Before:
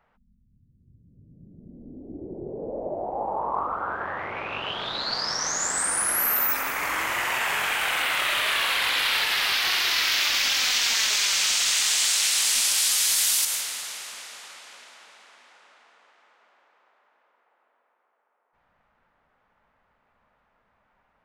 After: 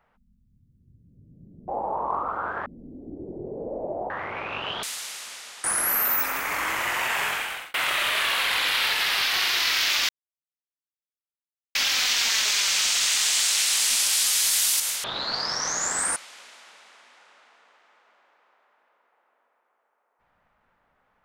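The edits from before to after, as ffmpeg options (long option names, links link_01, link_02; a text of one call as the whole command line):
ffmpeg -i in.wav -filter_complex "[0:a]asplit=10[link_01][link_02][link_03][link_04][link_05][link_06][link_07][link_08][link_09][link_10];[link_01]atrim=end=1.682[link_11];[link_02]atrim=start=3.118:end=4.102[link_12];[link_03]atrim=start=1.678:end=3.122[link_13];[link_04]atrim=start=4.098:end=4.832[link_14];[link_05]atrim=start=13.688:end=14.502[link_15];[link_06]atrim=start=5.948:end=8.05,asetpts=PTS-STARTPTS,afade=type=out:start_time=1.612:duration=0.49[link_16];[link_07]atrim=start=8.05:end=10.4,asetpts=PTS-STARTPTS,afade=type=in:duration=0.004:curve=hsin,afade=type=out:start_time=2.346:duration=0.004:curve=hsin,apad=pad_dur=1.66[link_17];[link_08]atrim=start=10.4:end=13.692,asetpts=PTS-STARTPTS,afade=type=in:duration=0.004:curve=hsin[link_18];[link_09]atrim=start=4.828:end=5.952[link_19];[link_10]atrim=start=14.498[link_20];[link_11][link_12]acrossfade=duration=0.004:curve1=hsin:curve2=hsin[link_21];[link_21][link_13]acrossfade=duration=0.004:curve1=hsin:curve2=hsin[link_22];[link_22][link_14]acrossfade=duration=0.004:curve1=hsin:curve2=hsin[link_23];[link_23][link_15]acrossfade=duration=0.004:curve1=hsin:curve2=hsin[link_24];[link_16][link_17][link_18]concat=n=3:v=0:a=1[link_25];[link_24][link_25]acrossfade=duration=0.004:curve1=hsin:curve2=hsin[link_26];[link_26][link_19]acrossfade=duration=0.004:curve1=hsin:curve2=hsin[link_27];[link_27][link_20]acrossfade=duration=0.004:curve1=hsin:curve2=hsin" out.wav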